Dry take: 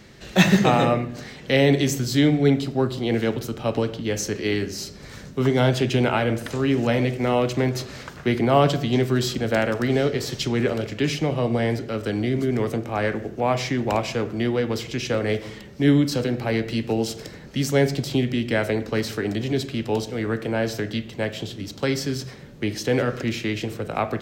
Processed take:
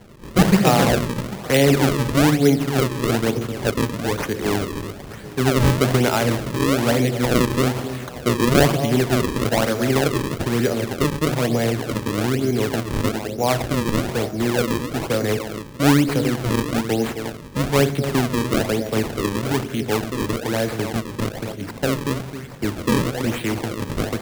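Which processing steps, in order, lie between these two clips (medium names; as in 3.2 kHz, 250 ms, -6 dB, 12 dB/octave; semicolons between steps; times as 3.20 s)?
echo whose repeats swap between lows and highs 264 ms, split 830 Hz, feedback 60%, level -10 dB; decimation with a swept rate 35×, swing 160% 1.1 Hz; trim +2 dB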